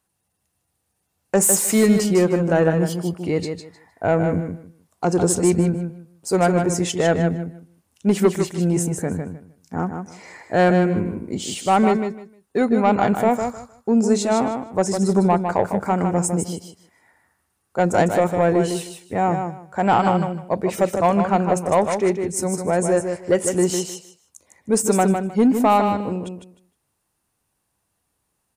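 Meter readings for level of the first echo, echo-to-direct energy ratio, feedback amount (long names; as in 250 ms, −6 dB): −6.5 dB, −6.5 dB, 20%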